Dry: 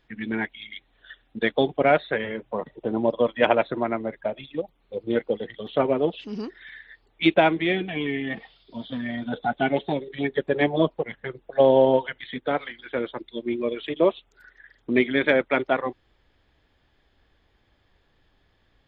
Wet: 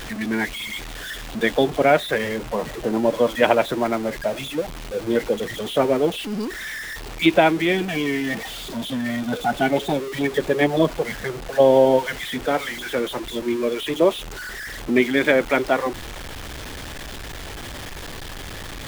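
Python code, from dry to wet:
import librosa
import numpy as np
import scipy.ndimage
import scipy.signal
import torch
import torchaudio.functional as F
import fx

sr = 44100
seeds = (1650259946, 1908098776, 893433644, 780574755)

y = x + 0.5 * 10.0 ** (-30.0 / 20.0) * np.sign(x)
y = F.gain(torch.from_numpy(y), 2.0).numpy()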